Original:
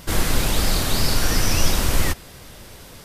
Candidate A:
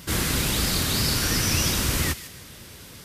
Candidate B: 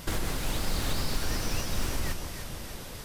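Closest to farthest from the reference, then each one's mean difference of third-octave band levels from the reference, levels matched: A, B; 1.5 dB, 5.0 dB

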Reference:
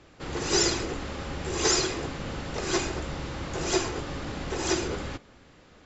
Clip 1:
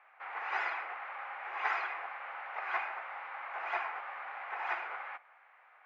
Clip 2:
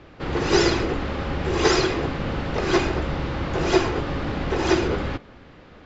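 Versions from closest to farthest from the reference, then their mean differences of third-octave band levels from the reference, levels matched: 2, 1; 2.5 dB, 16.5 dB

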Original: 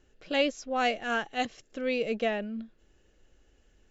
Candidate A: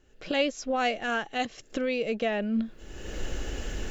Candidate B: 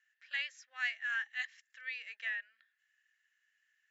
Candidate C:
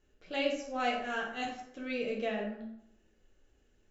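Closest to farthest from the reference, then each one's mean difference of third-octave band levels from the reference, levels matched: A, C, B; 2.5 dB, 5.5 dB, 10.0 dB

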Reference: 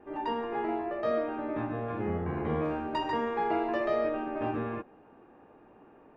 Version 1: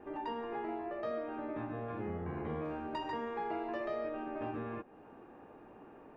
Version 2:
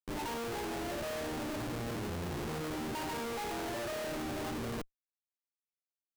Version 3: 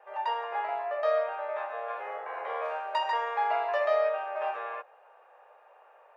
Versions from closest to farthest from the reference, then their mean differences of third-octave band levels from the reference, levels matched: 1, 3, 2; 2.0 dB, 9.5 dB, 13.0 dB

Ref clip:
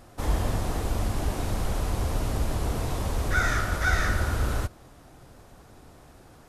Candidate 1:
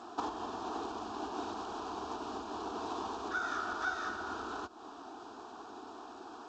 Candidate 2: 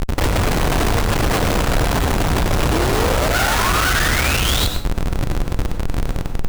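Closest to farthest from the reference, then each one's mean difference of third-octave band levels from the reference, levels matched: 2, 1; 7.0 dB, 10.0 dB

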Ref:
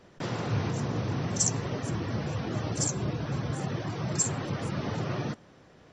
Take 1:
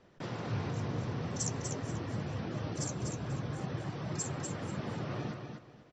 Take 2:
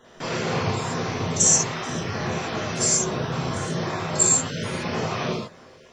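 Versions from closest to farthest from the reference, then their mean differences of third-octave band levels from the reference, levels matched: 1, 2; 2.5 dB, 5.0 dB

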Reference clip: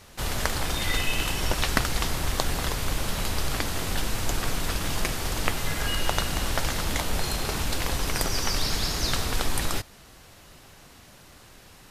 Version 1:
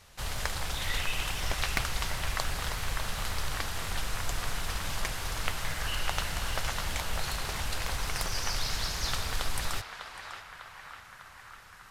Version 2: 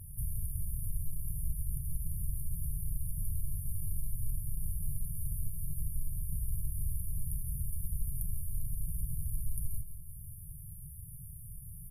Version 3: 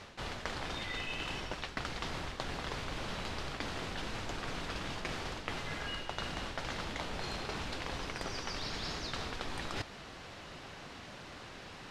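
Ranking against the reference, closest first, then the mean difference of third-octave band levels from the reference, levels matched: 1, 3, 2; 3.0 dB, 6.5 dB, 32.5 dB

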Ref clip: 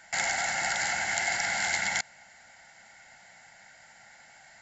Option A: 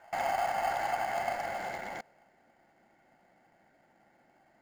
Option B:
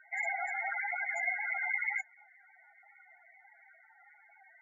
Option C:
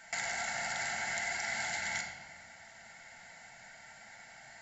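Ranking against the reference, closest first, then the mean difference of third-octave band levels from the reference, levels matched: C, A, B; 5.0 dB, 8.0 dB, 14.5 dB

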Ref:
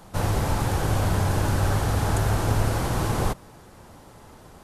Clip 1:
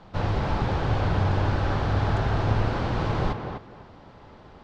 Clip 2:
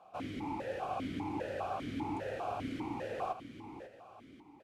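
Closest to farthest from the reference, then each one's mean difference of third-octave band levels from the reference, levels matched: 1, 2; 5.5 dB, 8.5 dB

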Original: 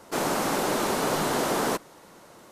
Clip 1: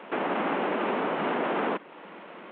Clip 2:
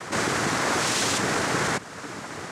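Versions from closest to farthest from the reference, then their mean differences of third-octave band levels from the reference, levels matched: 2, 1; 7.0 dB, 12.5 dB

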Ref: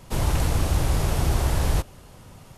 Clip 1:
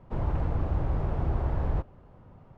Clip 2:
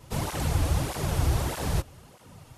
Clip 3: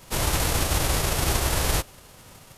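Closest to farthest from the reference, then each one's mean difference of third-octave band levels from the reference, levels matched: 2, 3, 1; 1.5 dB, 4.5 dB, 9.0 dB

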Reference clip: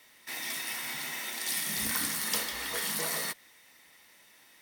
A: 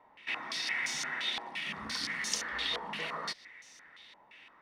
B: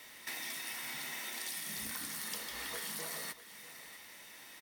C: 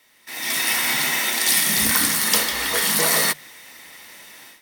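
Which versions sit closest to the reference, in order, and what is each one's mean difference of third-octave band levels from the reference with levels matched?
C, B, A; 2.5 dB, 5.5 dB, 8.5 dB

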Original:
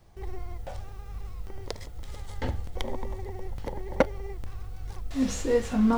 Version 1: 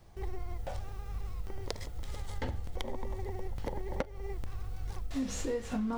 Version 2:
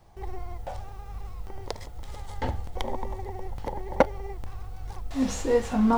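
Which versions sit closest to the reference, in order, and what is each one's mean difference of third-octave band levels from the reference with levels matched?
2, 1; 1.5 dB, 6.0 dB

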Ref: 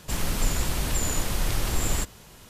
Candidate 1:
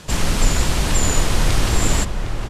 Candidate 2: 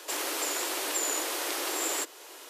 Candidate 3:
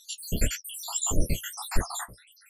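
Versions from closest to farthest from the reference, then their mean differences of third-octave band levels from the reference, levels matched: 1, 2, 3; 3.5 dB, 9.5 dB, 20.5 dB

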